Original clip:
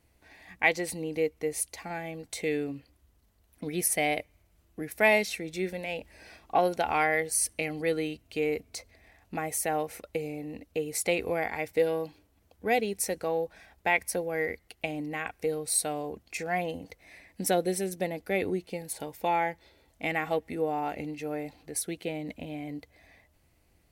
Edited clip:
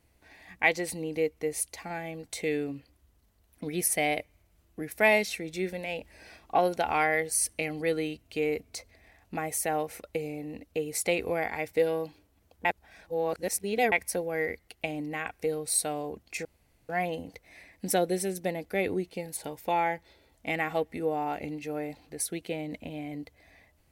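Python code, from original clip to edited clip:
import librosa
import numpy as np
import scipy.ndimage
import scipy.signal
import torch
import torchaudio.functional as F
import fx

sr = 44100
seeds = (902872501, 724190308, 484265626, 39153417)

y = fx.edit(x, sr, fx.reverse_span(start_s=12.65, length_s=1.27),
    fx.insert_room_tone(at_s=16.45, length_s=0.44), tone=tone)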